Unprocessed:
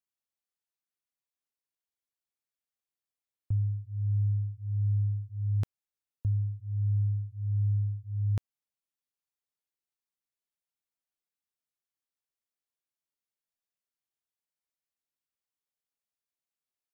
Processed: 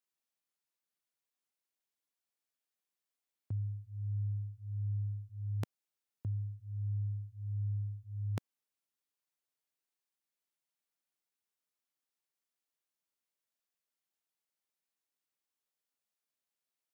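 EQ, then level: HPF 170 Hz 12 dB/oct; +1.0 dB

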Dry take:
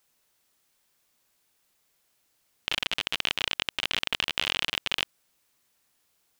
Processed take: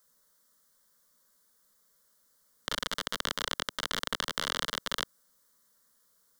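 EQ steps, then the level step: fixed phaser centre 510 Hz, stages 8; +3.5 dB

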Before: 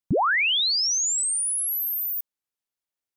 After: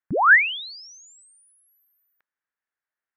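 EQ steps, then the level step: synth low-pass 1700 Hz, resonance Q 3.9; low shelf 260 Hz -8.5 dB; 0.0 dB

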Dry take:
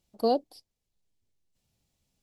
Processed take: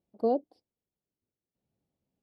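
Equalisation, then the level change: band-pass 340 Hz, Q 0.75; 0.0 dB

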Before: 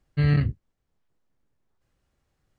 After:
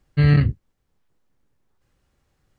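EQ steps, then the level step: notch 660 Hz, Q 16; +5.5 dB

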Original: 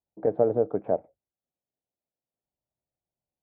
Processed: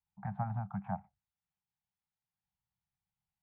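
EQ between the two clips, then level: Chebyshev band-stop 200–800 Hz, order 4; air absorption 220 m; +2.5 dB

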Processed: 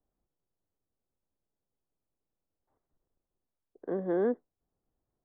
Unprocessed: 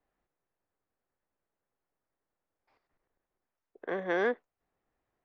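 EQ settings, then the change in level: low shelf 400 Hz +11 dB; dynamic EQ 280 Hz, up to +7 dB, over -44 dBFS, Q 0.84; running mean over 18 samples; -7.5 dB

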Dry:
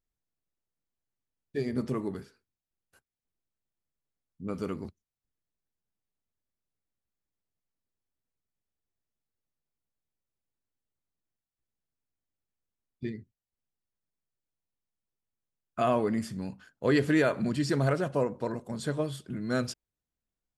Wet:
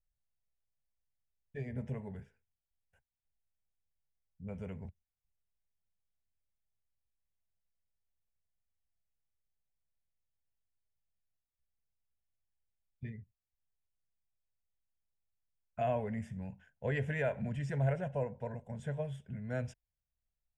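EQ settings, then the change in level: air absorption 82 m; low shelf 130 Hz +10.5 dB; fixed phaser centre 1200 Hz, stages 6; -5.5 dB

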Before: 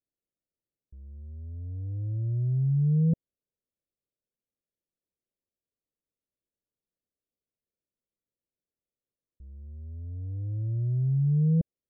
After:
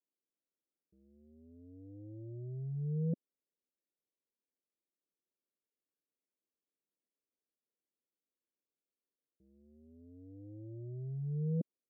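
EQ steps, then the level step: ladder band-pass 330 Hz, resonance 25%; low shelf 210 Hz -8.5 dB; +11.0 dB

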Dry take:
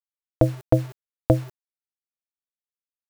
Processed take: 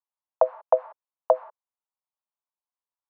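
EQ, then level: steep high-pass 500 Hz 72 dB/oct; synth low-pass 1000 Hz, resonance Q 3.7; air absorption 140 m; 0.0 dB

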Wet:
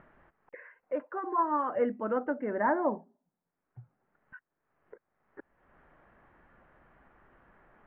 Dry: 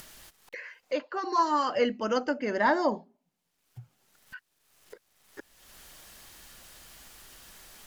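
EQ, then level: LPF 1800 Hz 24 dB/oct; air absorption 430 m; low shelf 83 Hz -8 dB; -1.0 dB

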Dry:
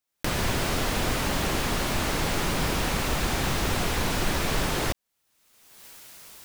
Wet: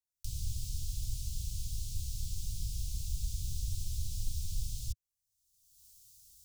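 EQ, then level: inverse Chebyshev band-stop 390–1900 Hz, stop band 70 dB; three-band isolator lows -16 dB, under 330 Hz, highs -24 dB, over 3300 Hz; bell 290 Hz -5.5 dB 1.9 oct; +12.0 dB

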